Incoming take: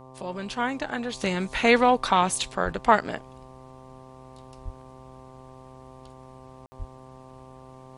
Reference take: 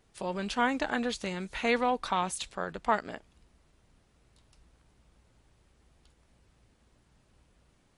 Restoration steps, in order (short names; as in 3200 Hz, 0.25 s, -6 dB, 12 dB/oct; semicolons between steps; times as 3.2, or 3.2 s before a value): de-hum 130.2 Hz, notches 9; de-plosive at 2.64/4.64/6.78; room tone fill 6.66–6.72; gain 0 dB, from 1.17 s -8.5 dB